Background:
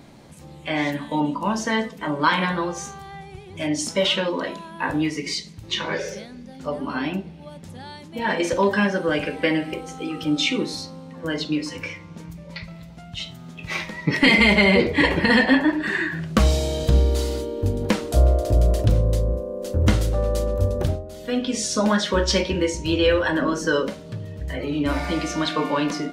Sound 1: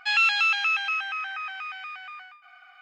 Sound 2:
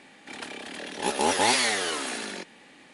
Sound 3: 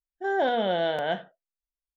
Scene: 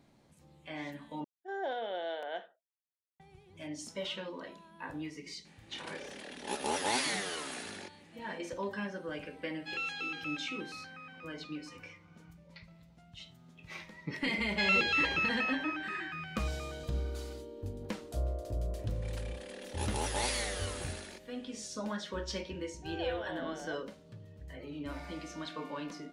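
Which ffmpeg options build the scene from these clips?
-filter_complex "[3:a]asplit=2[s0][s1];[2:a]asplit=2[s2][s3];[1:a]asplit=2[s4][s5];[0:a]volume=0.126[s6];[s0]highpass=f=310:w=0.5412,highpass=f=310:w=1.3066[s7];[s3]highshelf=f=6600:g=5.5[s8];[s1]highpass=420[s9];[s6]asplit=2[s10][s11];[s10]atrim=end=1.244[s12];[s7]atrim=end=1.96,asetpts=PTS-STARTPTS,volume=0.266[s13];[s11]atrim=start=3.196[s14];[s2]atrim=end=2.93,asetpts=PTS-STARTPTS,volume=0.335,afade=t=in:d=0.004:c=hsin,afade=t=out:st=2.926:d=0.004:c=hsin,adelay=240345S[s15];[s4]atrim=end=2.81,asetpts=PTS-STARTPTS,volume=0.15,afade=t=in:d=0.1,afade=t=out:st=2.71:d=0.1,adelay=9600[s16];[s5]atrim=end=2.81,asetpts=PTS-STARTPTS,volume=0.422,afade=t=in:d=0.004:c=hsin,afade=t=out:st=2.806:d=0.004:c=hsin,adelay=14520[s17];[s8]atrim=end=2.93,asetpts=PTS-STARTPTS,volume=0.224,afade=t=in:d=0.004:c=hsin,afade=t=out:st=2.926:d=0.004:c=hsin,adelay=18750[s18];[s9]atrim=end=1.96,asetpts=PTS-STARTPTS,volume=0.15,afade=t=in:d=0.004:c=hsin,afade=t=out:st=1.956:d=0.004:c=hsin,adelay=22610[s19];[s12][s13]acrossfade=d=0.004:c1=hsin:c2=hsin[s20];[s20][s14]acrossfade=d=0.004:c1=hsin:c2=hsin[s21];[s21][s15][s16][s17][s18][s19]amix=inputs=6:normalize=0"

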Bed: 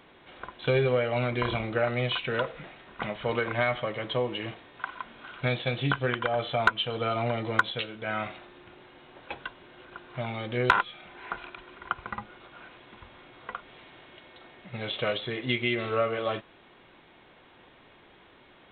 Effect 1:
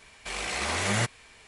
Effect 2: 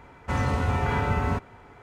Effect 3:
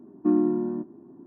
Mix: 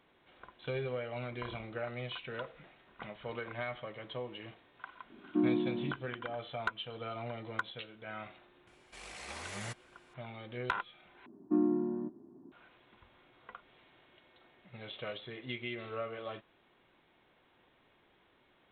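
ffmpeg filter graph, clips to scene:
-filter_complex "[3:a]asplit=2[s0][s1];[0:a]volume=0.237,asplit=2[s2][s3];[s2]atrim=end=11.264[s4];[s1]atrim=end=1.26,asetpts=PTS-STARTPTS,volume=0.422[s5];[s3]atrim=start=12.516[s6];[s0]atrim=end=1.26,asetpts=PTS-STARTPTS,volume=0.398,afade=t=in:d=0.004:c=hsin,afade=t=out:st=1.256:d=0.004:c=hsin,adelay=5100[s7];[1:a]atrim=end=1.47,asetpts=PTS-STARTPTS,volume=0.168,afade=t=in:d=0.004:c=hsin,afade=t=out:st=1.466:d=0.004:c=hsin,adelay=8670[s8];[s4][s5]acrossfade=d=0.004:c1=hsin:c2=hsin[s9];[s9][s6]acrossfade=d=0.004:c1=hsin:c2=hsin[s10];[s10][s7][s8]amix=inputs=3:normalize=0"

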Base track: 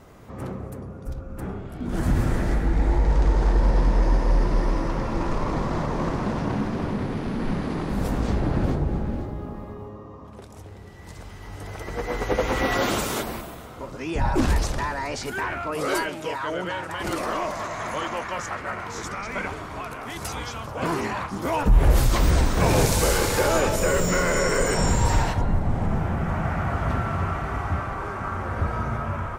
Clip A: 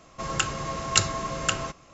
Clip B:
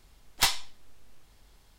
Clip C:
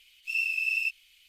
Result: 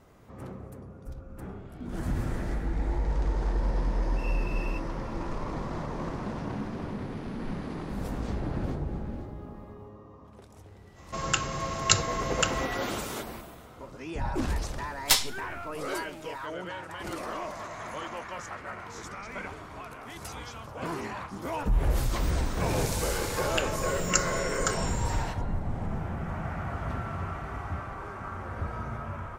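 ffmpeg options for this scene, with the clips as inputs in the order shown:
-filter_complex "[1:a]asplit=2[s0][s1];[0:a]volume=0.376[s2];[2:a]highshelf=f=4200:g=7[s3];[s1]asplit=2[s4][s5];[s5]afreqshift=-2.3[s6];[s4][s6]amix=inputs=2:normalize=1[s7];[3:a]atrim=end=1.28,asetpts=PTS-STARTPTS,volume=0.168,afade=t=in:d=0.004:c=hsin,afade=t=out:st=1.276:d=0.004:c=hsin,adelay=171549S[s8];[s0]atrim=end=1.93,asetpts=PTS-STARTPTS,volume=0.891,afade=t=in:d=0.05,afade=t=out:st=1.88:d=0.05,adelay=10940[s9];[s3]atrim=end=1.78,asetpts=PTS-STARTPTS,volume=0.841,afade=t=in:d=0.004:c=hsin,afade=t=out:st=1.776:d=0.004:c=hsin,adelay=14680[s10];[s7]atrim=end=1.93,asetpts=PTS-STARTPTS,volume=0.794,afade=t=in:d=0.004:c=hsin,afade=t=out:st=1.926:d=0.004:c=hsin,adelay=23180[s11];[s2][s8][s9][s10][s11]amix=inputs=5:normalize=0"

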